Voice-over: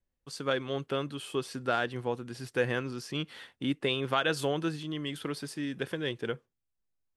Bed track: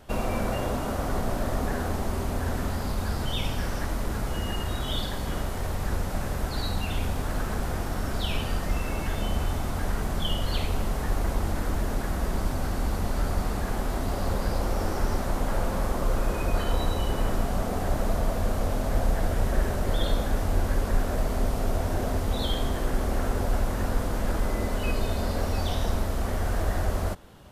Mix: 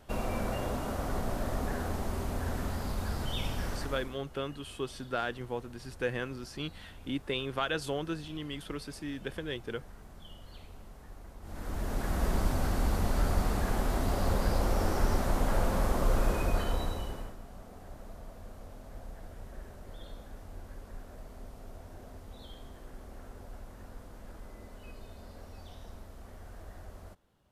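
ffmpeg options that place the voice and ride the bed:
-filter_complex "[0:a]adelay=3450,volume=0.631[s0];[1:a]volume=5.96,afade=t=out:st=3.71:d=0.47:silence=0.141254,afade=t=in:st=11.41:d=0.85:silence=0.0891251,afade=t=out:st=16.28:d=1.07:silence=0.105925[s1];[s0][s1]amix=inputs=2:normalize=0"

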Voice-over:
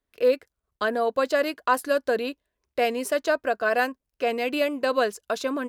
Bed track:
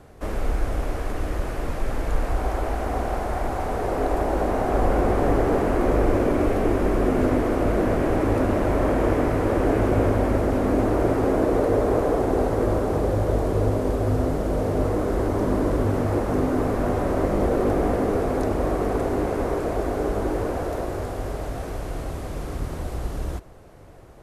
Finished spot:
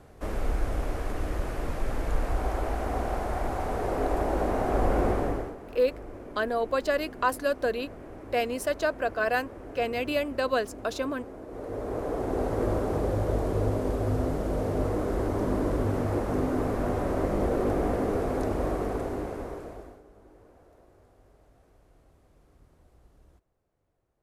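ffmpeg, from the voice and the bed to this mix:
-filter_complex "[0:a]adelay=5550,volume=0.668[s0];[1:a]volume=4.47,afade=t=out:st=5.07:d=0.48:silence=0.125893,afade=t=in:st=11.47:d=1.18:silence=0.141254,afade=t=out:st=18.66:d=1.36:silence=0.0562341[s1];[s0][s1]amix=inputs=2:normalize=0"

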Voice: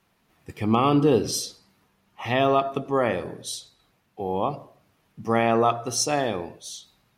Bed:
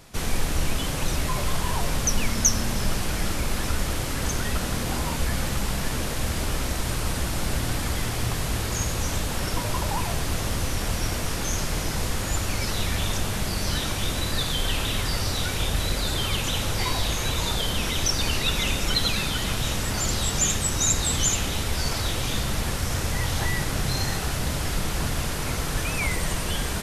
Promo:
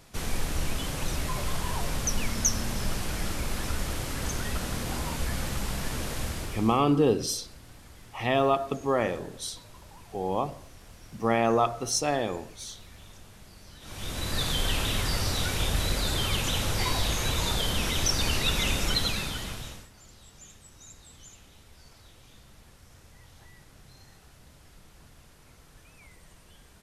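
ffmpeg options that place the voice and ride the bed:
-filter_complex "[0:a]adelay=5950,volume=0.708[s0];[1:a]volume=6.68,afade=t=out:st=6.2:d=0.63:silence=0.11885,afade=t=in:st=13.8:d=0.67:silence=0.0841395,afade=t=out:st=18.82:d=1.07:silence=0.0530884[s1];[s0][s1]amix=inputs=2:normalize=0"

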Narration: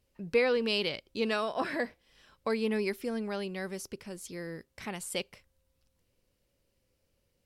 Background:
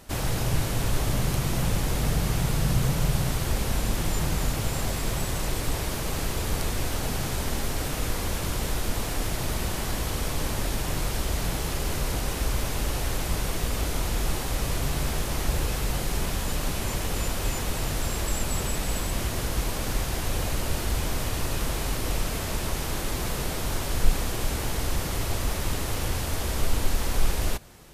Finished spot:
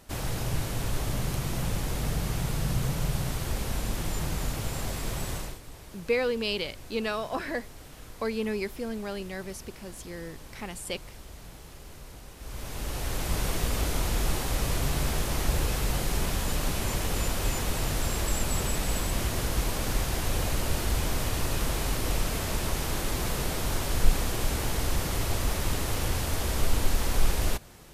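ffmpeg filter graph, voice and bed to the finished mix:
-filter_complex "[0:a]adelay=5750,volume=1[s0];[1:a]volume=4.47,afade=t=out:st=5.34:d=0.25:silence=0.211349,afade=t=in:st=12.38:d=1.07:silence=0.133352[s1];[s0][s1]amix=inputs=2:normalize=0"

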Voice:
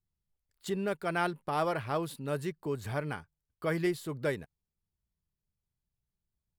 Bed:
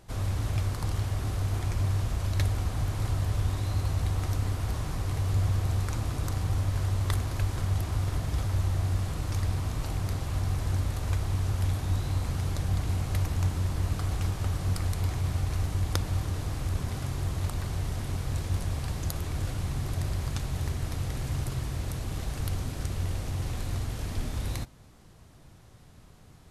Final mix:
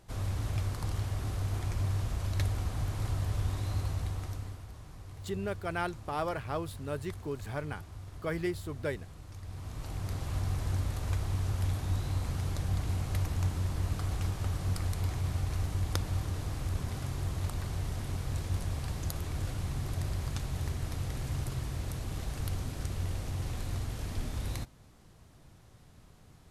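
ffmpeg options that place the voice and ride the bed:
-filter_complex "[0:a]adelay=4600,volume=0.708[s0];[1:a]volume=2.82,afade=t=out:st=3.77:d=0.9:silence=0.237137,afade=t=in:st=9.42:d=0.88:silence=0.223872[s1];[s0][s1]amix=inputs=2:normalize=0"

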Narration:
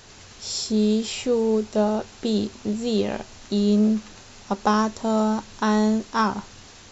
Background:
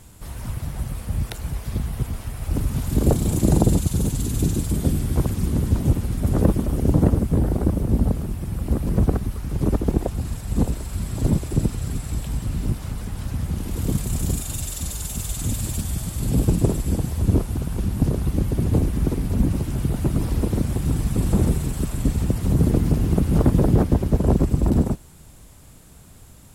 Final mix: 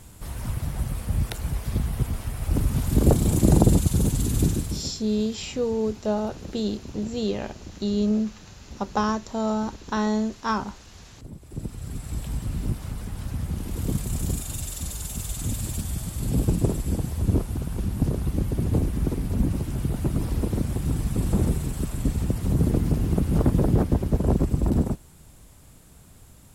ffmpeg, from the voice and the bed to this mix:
-filter_complex "[0:a]adelay=4300,volume=0.631[s0];[1:a]volume=7.94,afade=t=out:st=4.41:d=0.52:silence=0.0841395,afade=t=in:st=11.38:d=0.88:silence=0.125893[s1];[s0][s1]amix=inputs=2:normalize=0"

